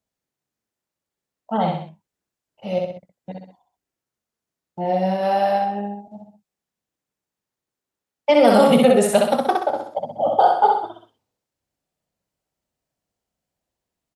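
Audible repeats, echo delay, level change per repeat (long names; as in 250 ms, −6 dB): 3, 64 ms, −6.5 dB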